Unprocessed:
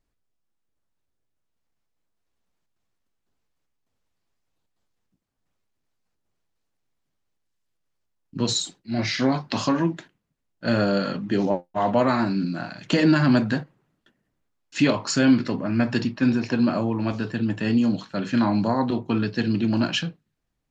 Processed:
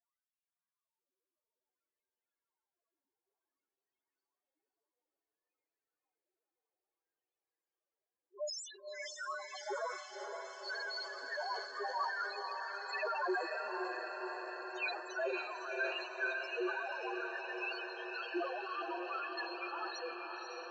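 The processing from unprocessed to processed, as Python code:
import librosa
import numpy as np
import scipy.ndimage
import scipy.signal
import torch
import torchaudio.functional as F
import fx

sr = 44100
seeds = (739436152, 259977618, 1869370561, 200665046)

y = fx.spec_gate(x, sr, threshold_db=-15, keep='weak')
y = fx.filter_lfo_highpass(y, sr, shape='sine', hz=0.58, low_hz=310.0, high_hz=1700.0, q=0.92)
y = fx.hum_notches(y, sr, base_hz=60, count=4)
y = fx.spec_topn(y, sr, count=1)
y = fx.echo_diffused(y, sr, ms=550, feedback_pct=75, wet_db=-4.5)
y = fx.sustainer(y, sr, db_per_s=67.0)
y = y * librosa.db_to_amplitude(7.5)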